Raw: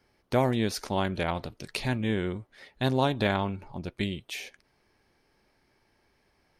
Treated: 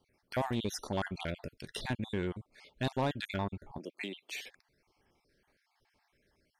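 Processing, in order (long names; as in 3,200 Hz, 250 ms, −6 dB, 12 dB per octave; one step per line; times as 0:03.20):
time-frequency cells dropped at random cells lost 40%
soft clipping −21 dBFS, distortion −13 dB
0:03.78–0:04.32: high-pass filter 250 Hz 24 dB per octave
level −3 dB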